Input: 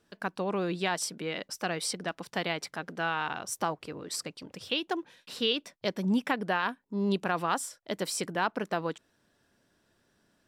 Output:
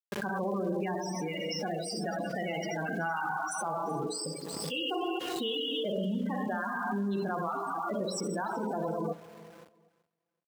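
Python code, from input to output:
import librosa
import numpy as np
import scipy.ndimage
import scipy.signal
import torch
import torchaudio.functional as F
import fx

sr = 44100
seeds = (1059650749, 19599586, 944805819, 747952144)

p1 = fx.high_shelf(x, sr, hz=8300.0, db=3.0)
p2 = fx.rev_schroeder(p1, sr, rt60_s=1.7, comb_ms=29, drr_db=0.0)
p3 = fx.level_steps(p2, sr, step_db=19)
p4 = fx.spec_topn(p3, sr, count=16)
p5 = fx.hum_notches(p4, sr, base_hz=60, count=10)
p6 = np.where(np.abs(p5) >= 10.0 ** (-58.5 / 20.0), p5, 0.0)
p7 = scipy.signal.sosfilt(scipy.signal.butter(2, 100.0, 'highpass', fs=sr, output='sos'), p6)
p8 = fx.peak_eq(p7, sr, hz=150.0, db=2.0, octaves=0.77)
p9 = p8 + fx.echo_feedback(p8, sr, ms=379, feedback_pct=23, wet_db=-20, dry=0)
p10 = fx.pre_swell(p9, sr, db_per_s=22.0)
y = p10 * 10.0 ** (7.0 / 20.0)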